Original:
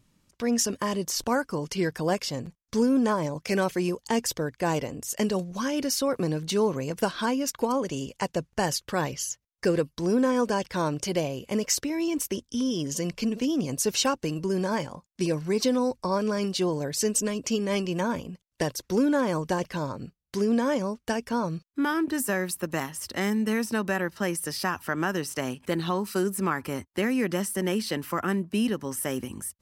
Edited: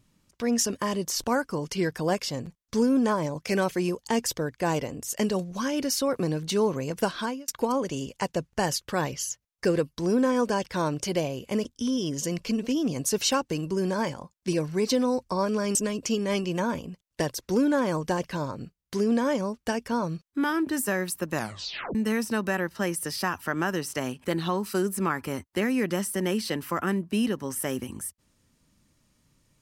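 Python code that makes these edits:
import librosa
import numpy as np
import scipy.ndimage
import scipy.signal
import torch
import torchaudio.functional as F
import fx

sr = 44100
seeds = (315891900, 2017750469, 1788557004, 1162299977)

y = fx.edit(x, sr, fx.fade_out_span(start_s=7.16, length_s=0.32),
    fx.cut(start_s=11.65, length_s=0.73),
    fx.cut(start_s=16.48, length_s=0.68),
    fx.tape_stop(start_s=22.74, length_s=0.62), tone=tone)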